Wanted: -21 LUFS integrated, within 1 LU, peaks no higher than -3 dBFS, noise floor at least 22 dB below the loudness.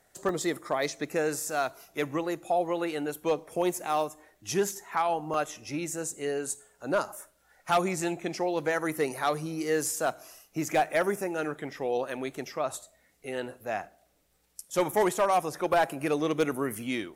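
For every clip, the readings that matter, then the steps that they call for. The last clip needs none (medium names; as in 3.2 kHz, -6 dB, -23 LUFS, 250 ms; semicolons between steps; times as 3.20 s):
clipped samples 0.3%; clipping level -17.5 dBFS; dropouts 2; longest dropout 1.1 ms; loudness -30.0 LUFS; peak level -17.5 dBFS; loudness target -21.0 LUFS
-> clip repair -17.5 dBFS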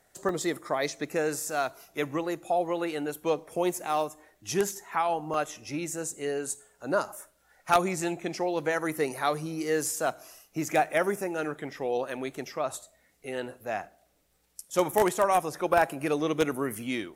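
clipped samples 0.0%; dropouts 2; longest dropout 1.1 ms
-> interpolate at 0.29/5.34 s, 1.1 ms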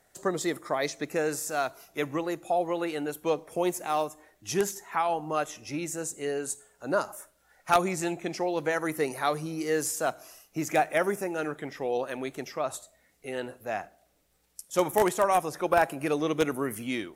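dropouts 0; loudness -29.5 LUFS; peak level -8.5 dBFS; loudness target -21.0 LUFS
-> trim +8.5 dB; peak limiter -3 dBFS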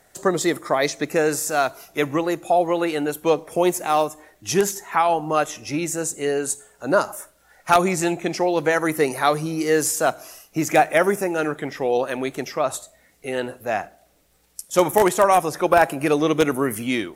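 loudness -21.5 LUFS; peak level -3.0 dBFS; noise floor -59 dBFS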